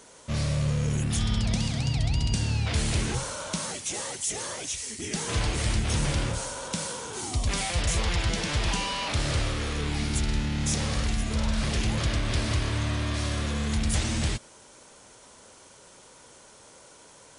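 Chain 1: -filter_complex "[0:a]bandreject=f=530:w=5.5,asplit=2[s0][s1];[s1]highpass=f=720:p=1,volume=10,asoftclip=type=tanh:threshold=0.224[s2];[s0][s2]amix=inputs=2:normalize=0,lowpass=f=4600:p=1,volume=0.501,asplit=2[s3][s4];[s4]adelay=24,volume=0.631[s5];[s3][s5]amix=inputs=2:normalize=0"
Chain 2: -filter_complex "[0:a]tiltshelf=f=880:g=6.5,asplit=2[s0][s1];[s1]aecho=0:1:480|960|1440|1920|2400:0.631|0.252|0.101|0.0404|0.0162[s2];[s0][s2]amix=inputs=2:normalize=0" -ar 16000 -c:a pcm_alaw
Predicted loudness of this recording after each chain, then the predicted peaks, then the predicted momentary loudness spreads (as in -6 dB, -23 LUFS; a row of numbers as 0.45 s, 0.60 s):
-22.0 LUFS, -22.5 LUFS; -11.0 dBFS, -7.0 dBFS; 18 LU, 11 LU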